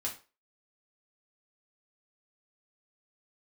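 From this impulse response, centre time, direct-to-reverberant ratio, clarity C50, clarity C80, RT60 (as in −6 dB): 18 ms, −3.5 dB, 10.0 dB, 16.5 dB, 0.35 s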